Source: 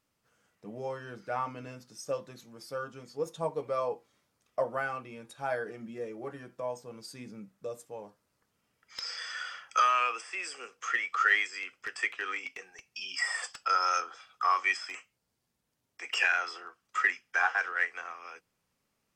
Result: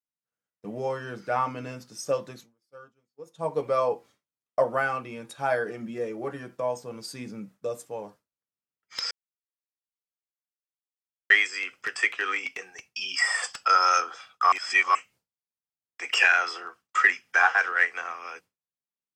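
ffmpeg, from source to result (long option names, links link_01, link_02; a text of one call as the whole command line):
ffmpeg -i in.wav -filter_complex "[0:a]asplit=7[link_01][link_02][link_03][link_04][link_05][link_06][link_07];[link_01]atrim=end=2.55,asetpts=PTS-STARTPTS,afade=type=out:start_time=2.29:duration=0.26:silence=0.133352[link_08];[link_02]atrim=start=2.55:end=3.31,asetpts=PTS-STARTPTS,volume=-17.5dB[link_09];[link_03]atrim=start=3.31:end=9.11,asetpts=PTS-STARTPTS,afade=type=in:duration=0.26:silence=0.133352,afade=type=out:start_time=5.796:duration=0.004:curve=hsin[link_10];[link_04]atrim=start=9.11:end=11.3,asetpts=PTS-STARTPTS,volume=0[link_11];[link_05]atrim=start=11.3:end=14.522,asetpts=PTS-STARTPTS,afade=type=in:duration=0.004:curve=hsin[link_12];[link_06]atrim=start=14.518:end=14.952,asetpts=PTS-STARTPTS,areverse[link_13];[link_07]atrim=start=14.948[link_14];[link_08][link_09][link_10][link_11][link_12]concat=n=5:v=0:a=1[link_15];[link_15][link_13]acrossfade=duration=0.004:curve1=hsin:curve2=hsin[link_16];[link_16][link_14]acrossfade=duration=0.004:curve1=hsin:curve2=hsin,agate=range=-33dB:threshold=-53dB:ratio=3:detection=peak,highpass=69,volume=7dB" out.wav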